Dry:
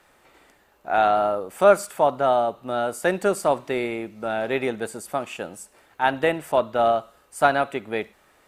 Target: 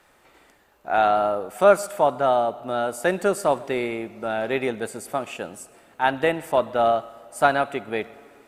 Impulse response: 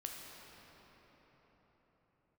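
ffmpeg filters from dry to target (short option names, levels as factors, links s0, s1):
-filter_complex "[0:a]asplit=2[s0][s1];[1:a]atrim=start_sample=2205,asetrate=88200,aresample=44100,adelay=128[s2];[s1][s2]afir=irnorm=-1:irlink=0,volume=0.224[s3];[s0][s3]amix=inputs=2:normalize=0"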